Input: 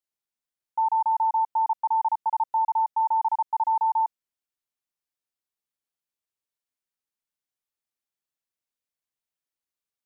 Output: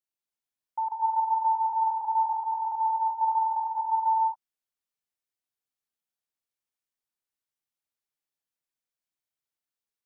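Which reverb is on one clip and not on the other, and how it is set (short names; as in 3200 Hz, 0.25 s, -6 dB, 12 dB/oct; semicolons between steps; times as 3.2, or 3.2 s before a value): non-linear reverb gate 0.3 s rising, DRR 0 dB; gain -5 dB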